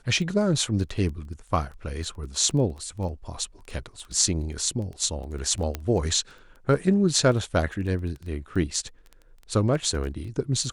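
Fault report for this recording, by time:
crackle 11 per s -33 dBFS
5.75 s: pop -14 dBFS

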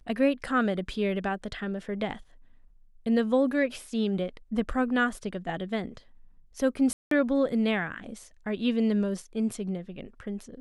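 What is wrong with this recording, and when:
6.93–7.11 s: dropout 183 ms

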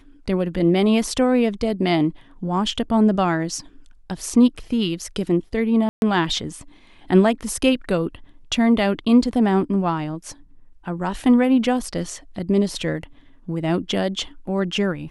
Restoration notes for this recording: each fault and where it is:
5.89–6.02 s: dropout 131 ms

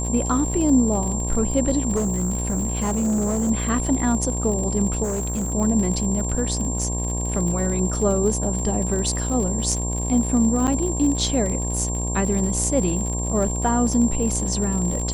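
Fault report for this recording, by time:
buzz 60 Hz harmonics 18 -26 dBFS
crackle 73 per s -28 dBFS
whine 7.4 kHz -28 dBFS
1.95–3.51 s: clipped -18.5 dBFS
5.03–5.52 s: clipped -21.5 dBFS
10.67–10.68 s: dropout 8.2 ms

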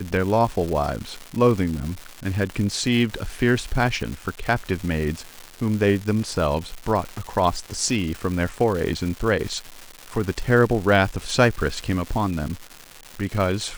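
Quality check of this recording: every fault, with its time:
crackle 390 per s -28 dBFS

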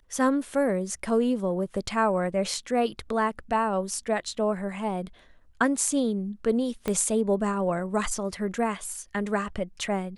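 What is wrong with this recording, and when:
6.88 s: pop -14 dBFS

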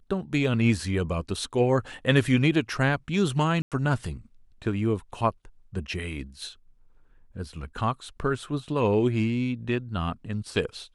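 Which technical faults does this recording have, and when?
3.62–3.72 s: dropout 97 ms

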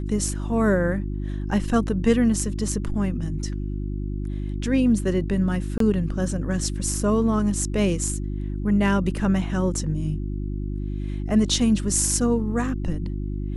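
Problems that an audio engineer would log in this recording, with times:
hum 50 Hz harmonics 7 -28 dBFS
5.78–5.80 s: dropout 23 ms

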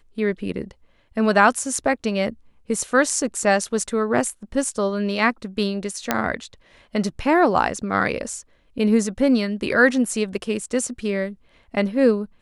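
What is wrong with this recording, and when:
6.11 s: pop -3 dBFS

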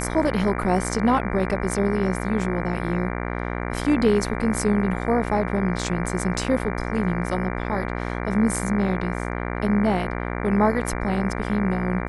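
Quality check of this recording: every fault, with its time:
buzz 60 Hz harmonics 39 -28 dBFS

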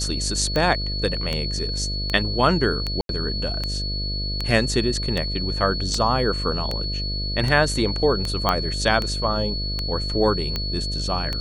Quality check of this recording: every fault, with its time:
buzz 50 Hz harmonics 13 -28 dBFS
tick 78 rpm -11 dBFS
whine 4.4 kHz -28 dBFS
3.01–3.09 s: dropout 82 ms
8.49 s: pop -6 dBFS

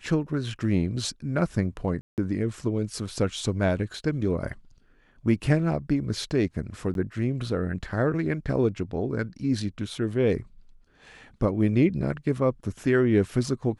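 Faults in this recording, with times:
2.01–2.18 s: dropout 168 ms
6.94–6.95 s: dropout 12 ms

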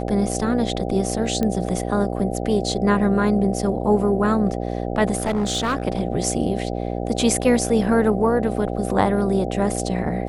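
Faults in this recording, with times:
buzz 60 Hz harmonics 13 -26 dBFS
1.43 s: pop -11 dBFS
5.17–5.85 s: clipped -17.5 dBFS

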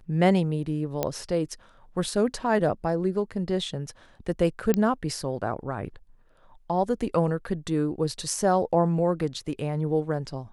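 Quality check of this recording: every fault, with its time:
1.03 s: pop -11 dBFS
4.74 s: pop -10 dBFS

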